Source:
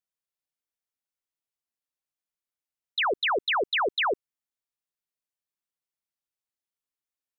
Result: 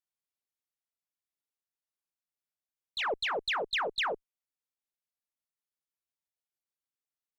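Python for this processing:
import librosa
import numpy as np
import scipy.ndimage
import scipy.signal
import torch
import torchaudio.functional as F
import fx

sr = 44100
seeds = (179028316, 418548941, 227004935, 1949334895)

y = fx.pitch_glide(x, sr, semitones=2.5, runs='starting unshifted')
y = fx.cheby_harmonics(y, sr, harmonics=(2, 5), levels_db=(-19, -38), full_scale_db=-21.0)
y = y * librosa.db_to_amplitude(-4.5)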